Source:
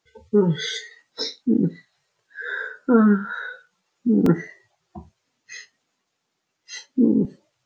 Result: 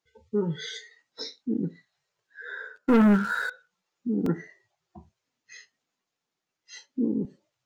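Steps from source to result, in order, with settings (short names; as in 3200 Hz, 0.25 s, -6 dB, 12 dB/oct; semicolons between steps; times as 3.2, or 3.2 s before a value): 2.76–3.5 sample leveller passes 3; gain -9 dB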